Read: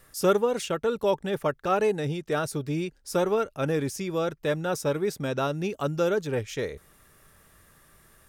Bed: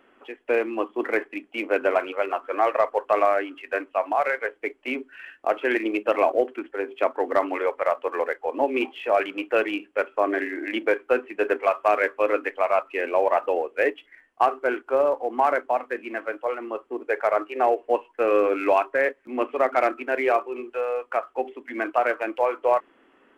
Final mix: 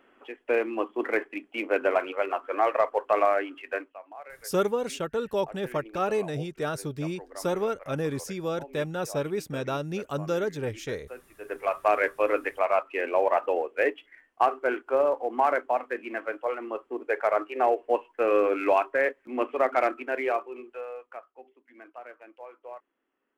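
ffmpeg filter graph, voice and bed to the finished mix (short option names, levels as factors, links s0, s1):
-filter_complex "[0:a]adelay=4300,volume=0.708[s0];[1:a]volume=6.31,afade=t=out:st=3.68:d=0.3:silence=0.11885,afade=t=in:st=11.4:d=0.45:silence=0.11885,afade=t=out:st=19.74:d=1.59:silence=0.105925[s1];[s0][s1]amix=inputs=2:normalize=0"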